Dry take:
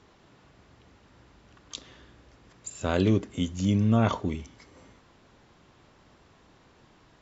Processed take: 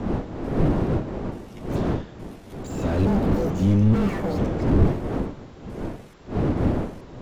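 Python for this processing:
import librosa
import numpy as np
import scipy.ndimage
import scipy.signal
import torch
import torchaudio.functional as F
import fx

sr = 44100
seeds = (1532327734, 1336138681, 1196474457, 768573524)

y = fx.pitch_trill(x, sr, semitones=11.5, every_ms=438)
y = fx.dmg_wind(y, sr, seeds[0], corner_hz=350.0, level_db=-30.0)
y = fx.slew_limit(y, sr, full_power_hz=16.0)
y = y * 10.0 ** (7.0 / 20.0)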